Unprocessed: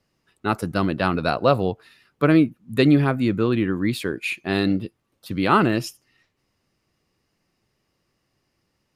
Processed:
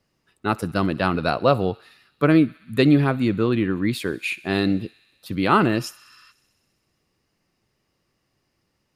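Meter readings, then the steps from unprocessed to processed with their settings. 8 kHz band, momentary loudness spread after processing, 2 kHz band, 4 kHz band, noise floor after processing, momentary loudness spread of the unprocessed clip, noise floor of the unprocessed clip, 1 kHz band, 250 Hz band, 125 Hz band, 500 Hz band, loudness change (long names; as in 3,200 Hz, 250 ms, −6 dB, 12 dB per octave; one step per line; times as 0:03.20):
0.0 dB, 10 LU, 0.0 dB, 0.0 dB, −73 dBFS, 10 LU, −73 dBFS, 0.0 dB, 0.0 dB, 0.0 dB, 0.0 dB, 0.0 dB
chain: feedback echo with a high-pass in the loop 64 ms, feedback 82%, high-pass 870 Hz, level −22 dB
healed spectral selection 0:05.99–0:06.29, 980–5,400 Hz before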